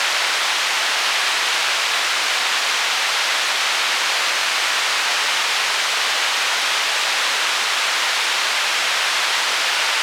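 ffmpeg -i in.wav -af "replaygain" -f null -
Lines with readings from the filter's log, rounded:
track_gain = +0.5 dB
track_peak = 0.369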